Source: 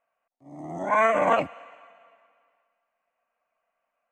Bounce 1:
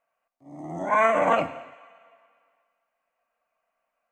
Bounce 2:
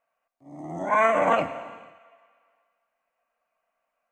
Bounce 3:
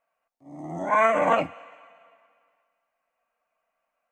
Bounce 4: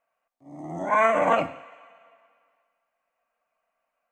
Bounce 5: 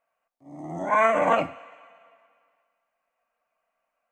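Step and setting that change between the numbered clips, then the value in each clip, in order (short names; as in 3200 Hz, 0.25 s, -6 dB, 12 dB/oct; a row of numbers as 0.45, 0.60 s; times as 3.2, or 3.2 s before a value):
non-linear reverb, gate: 310, 540, 80, 210, 140 ms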